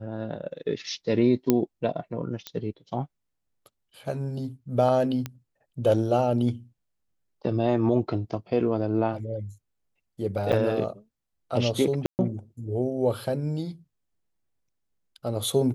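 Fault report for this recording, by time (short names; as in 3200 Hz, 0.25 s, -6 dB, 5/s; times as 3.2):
1.5 pop -7 dBFS
2.47 pop -17 dBFS
5.26 pop -17 dBFS
10.52–10.53 gap 7.8 ms
12.06–12.19 gap 0.129 s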